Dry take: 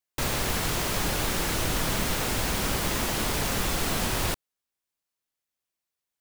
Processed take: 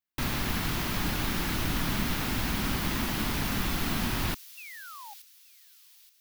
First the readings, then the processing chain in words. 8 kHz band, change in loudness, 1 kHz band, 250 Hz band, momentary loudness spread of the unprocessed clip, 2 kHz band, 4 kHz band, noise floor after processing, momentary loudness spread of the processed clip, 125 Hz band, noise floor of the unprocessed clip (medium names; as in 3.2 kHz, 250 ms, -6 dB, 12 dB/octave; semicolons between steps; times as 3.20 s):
-8.0 dB, -3.0 dB, -3.5 dB, +1.0 dB, 1 LU, -2.5 dB, -3.5 dB, -58 dBFS, 13 LU, -0.5 dB, under -85 dBFS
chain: graphic EQ 250/500/8000 Hz +6/-10/-9 dB; painted sound fall, 4.57–5.14 s, 780–2800 Hz -44 dBFS; feedback echo behind a high-pass 875 ms, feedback 41%, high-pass 5 kHz, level -11 dB; trim -1.5 dB